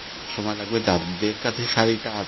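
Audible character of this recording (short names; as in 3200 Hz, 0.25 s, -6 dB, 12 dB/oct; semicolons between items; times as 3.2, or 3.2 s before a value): a buzz of ramps at a fixed pitch in blocks of 8 samples; tremolo triangle 1.3 Hz, depth 90%; a quantiser's noise floor 6-bit, dither triangular; MP3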